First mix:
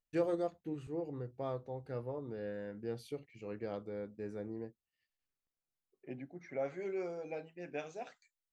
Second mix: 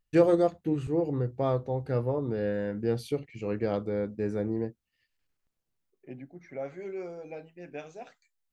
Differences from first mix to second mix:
first voice +10.5 dB
master: add low-shelf EQ 230 Hz +5 dB

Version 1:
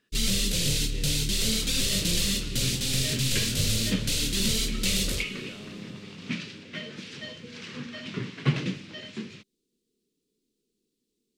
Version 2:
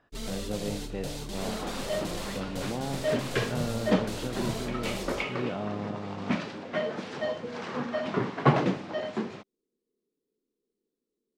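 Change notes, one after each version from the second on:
speech: remove high-pass filter 260 Hz 12 dB per octave
first sound −11.0 dB
master: remove drawn EQ curve 150 Hz 0 dB, 490 Hz −11 dB, 740 Hz −22 dB, 2,600 Hz +4 dB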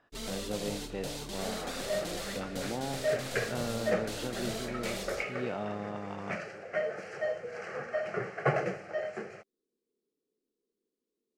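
second sound: add phaser with its sweep stopped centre 980 Hz, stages 6
master: add low-shelf EQ 210 Hz −7.5 dB

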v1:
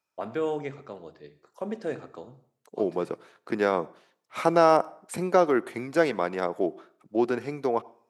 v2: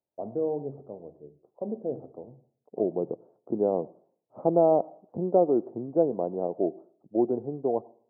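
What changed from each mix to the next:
master: add Butterworth low-pass 750 Hz 36 dB per octave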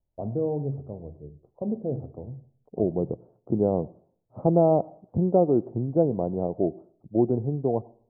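master: remove high-pass filter 300 Hz 12 dB per octave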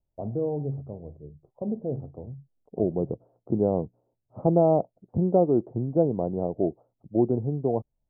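reverb: off

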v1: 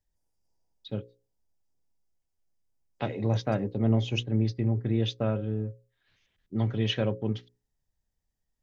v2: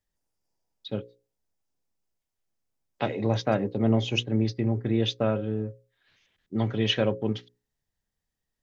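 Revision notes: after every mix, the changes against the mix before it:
first voice +5.0 dB
master: add low-shelf EQ 120 Hz −11.5 dB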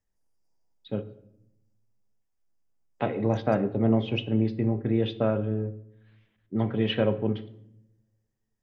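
first voice: add high-frequency loss of the air 410 metres
reverb: on, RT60 0.80 s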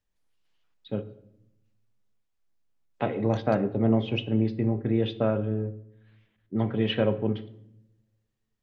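second voice: remove linear-phase brick-wall band-stop 1,000–4,600 Hz

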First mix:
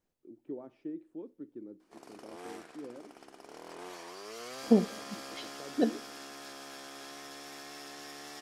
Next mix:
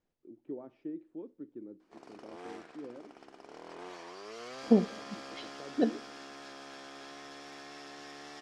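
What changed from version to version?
master: add high-frequency loss of the air 87 metres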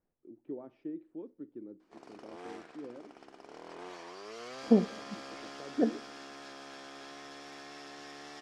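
second voice: add moving average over 12 samples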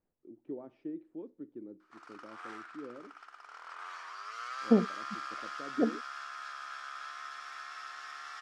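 background: add high-pass with resonance 1,300 Hz, resonance Q 5.9
reverb: off

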